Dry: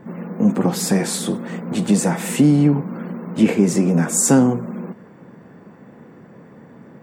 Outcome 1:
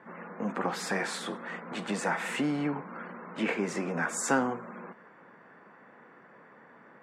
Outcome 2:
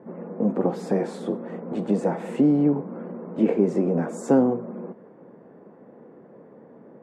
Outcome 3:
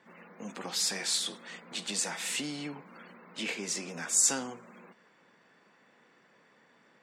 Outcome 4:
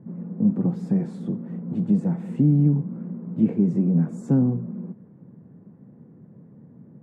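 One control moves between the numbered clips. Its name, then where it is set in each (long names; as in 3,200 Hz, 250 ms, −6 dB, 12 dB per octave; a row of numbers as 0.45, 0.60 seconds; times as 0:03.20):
resonant band-pass, frequency: 1,500, 490, 4,100, 130 Hertz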